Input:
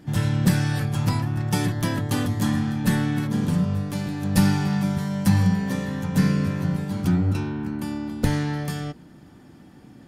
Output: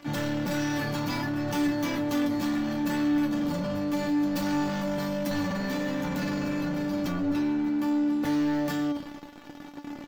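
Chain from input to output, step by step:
high-pass filter 200 Hz 12 dB per octave
echo with shifted repeats 131 ms, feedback 54%, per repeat −58 Hz, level −23.5 dB
leveller curve on the samples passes 5
parametric band 9,700 Hz −14 dB 0.56 octaves
tuned comb filter 290 Hz, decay 0.18 s, harmonics all, mix 90%
in parallel at −1 dB: compressor whose output falls as the input rises −34 dBFS, ratio −1
on the sum: level −6.5 dB

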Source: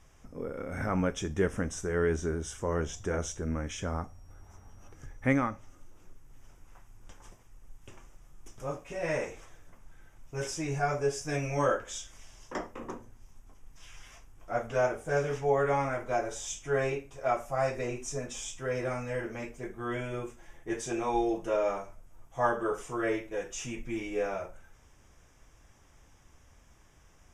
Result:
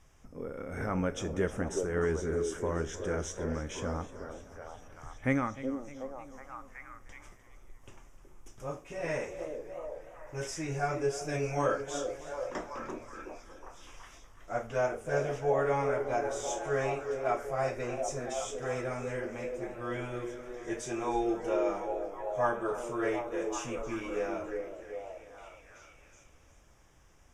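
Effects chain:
echo through a band-pass that steps 371 ms, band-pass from 390 Hz, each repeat 0.7 octaves, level −2.5 dB
feedback echo with a swinging delay time 306 ms, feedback 56%, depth 104 cents, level −16.5 dB
level −2.5 dB

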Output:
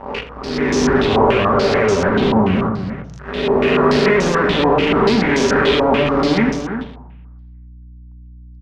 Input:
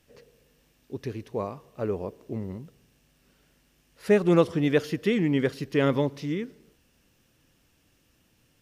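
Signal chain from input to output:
peak hold with a rise ahead of every peak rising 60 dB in 1.42 s
dynamic equaliser 160 Hz, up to +4 dB, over −39 dBFS, Q 1.5
downward compressor, threshold −30 dBFS, peak gain reduction 17 dB
fuzz pedal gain 46 dB, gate −49 dBFS
mains hum 60 Hz, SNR 26 dB
slap from a distant wall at 57 metres, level −8 dB
on a send at −5 dB: convolution reverb RT60 1.1 s, pre-delay 3 ms
on the sum: low-pass on a step sequencer 6.9 Hz 920–6,100 Hz
level −4 dB

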